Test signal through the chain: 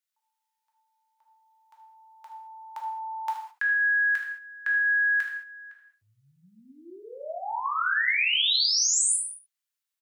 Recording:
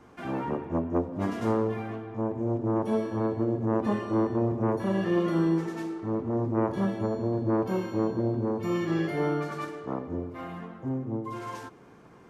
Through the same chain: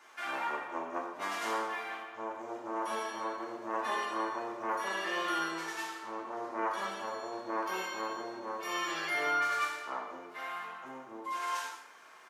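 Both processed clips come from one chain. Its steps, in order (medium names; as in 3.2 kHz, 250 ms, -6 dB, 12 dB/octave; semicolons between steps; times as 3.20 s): high-pass 1.3 kHz 12 dB/octave; delay 75 ms -14 dB; gated-style reverb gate 240 ms falling, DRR -0.5 dB; trim +4.5 dB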